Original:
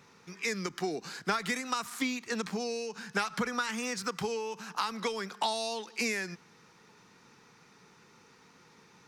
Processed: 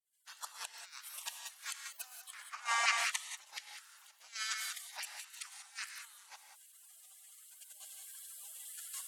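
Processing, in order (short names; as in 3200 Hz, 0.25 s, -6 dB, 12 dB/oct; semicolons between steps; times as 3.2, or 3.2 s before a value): opening faded in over 0.92 s; recorder AGC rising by 6.8 dB/s; flipped gate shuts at -25 dBFS, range -25 dB; spectral gate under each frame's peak -30 dB weak; LFO high-pass saw down 1.4 Hz 730–1900 Hz; 2.33–2.92 band shelf 1200 Hz +10.5 dB 2.5 oct; treble ducked by the level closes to 1700 Hz, closed at -35 dBFS; non-linear reverb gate 0.21 s rising, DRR 4 dB; in parallel at +3 dB: level quantiser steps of 9 dB; 4.49–6.02 on the sum: resonant low shelf 590 Hz -8 dB, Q 1.5; gain +12 dB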